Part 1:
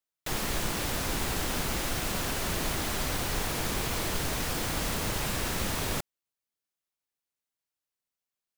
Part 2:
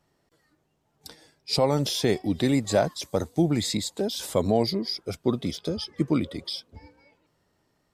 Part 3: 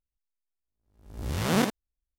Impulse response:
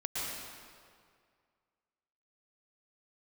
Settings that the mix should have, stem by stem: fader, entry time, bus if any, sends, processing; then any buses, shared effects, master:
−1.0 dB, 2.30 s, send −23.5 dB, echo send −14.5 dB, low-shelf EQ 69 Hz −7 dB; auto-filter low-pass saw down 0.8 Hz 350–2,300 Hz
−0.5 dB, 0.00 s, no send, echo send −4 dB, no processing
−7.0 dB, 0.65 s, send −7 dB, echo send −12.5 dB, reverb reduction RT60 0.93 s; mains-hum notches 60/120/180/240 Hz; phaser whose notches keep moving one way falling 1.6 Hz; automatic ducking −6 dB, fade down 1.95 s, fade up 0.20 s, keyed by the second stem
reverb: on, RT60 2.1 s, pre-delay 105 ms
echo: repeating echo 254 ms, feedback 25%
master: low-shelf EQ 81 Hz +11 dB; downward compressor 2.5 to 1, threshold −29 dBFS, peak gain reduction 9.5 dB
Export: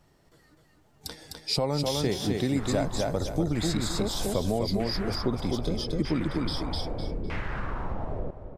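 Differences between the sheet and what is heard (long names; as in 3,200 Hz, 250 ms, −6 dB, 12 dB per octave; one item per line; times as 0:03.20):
stem 1: missing low-shelf EQ 69 Hz −7 dB
stem 2 −0.5 dB → +5.5 dB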